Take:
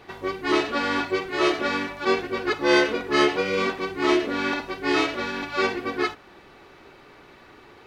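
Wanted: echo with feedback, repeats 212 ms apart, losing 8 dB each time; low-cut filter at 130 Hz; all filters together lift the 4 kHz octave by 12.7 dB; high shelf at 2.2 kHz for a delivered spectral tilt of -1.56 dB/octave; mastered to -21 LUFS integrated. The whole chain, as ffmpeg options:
-af "highpass=130,highshelf=f=2200:g=8,equalizer=f=4000:t=o:g=8.5,aecho=1:1:212|424|636|848|1060:0.398|0.159|0.0637|0.0255|0.0102,volume=0.708"

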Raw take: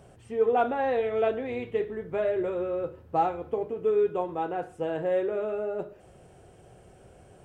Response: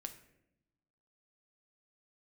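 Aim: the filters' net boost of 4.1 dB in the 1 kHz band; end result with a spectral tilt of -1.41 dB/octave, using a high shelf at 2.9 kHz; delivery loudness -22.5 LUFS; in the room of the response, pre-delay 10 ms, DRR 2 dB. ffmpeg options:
-filter_complex "[0:a]equalizer=f=1000:t=o:g=7,highshelf=f=2900:g=-8,asplit=2[s0][s1];[1:a]atrim=start_sample=2205,adelay=10[s2];[s1][s2]afir=irnorm=-1:irlink=0,volume=1.19[s3];[s0][s3]amix=inputs=2:normalize=0,volume=1.33"

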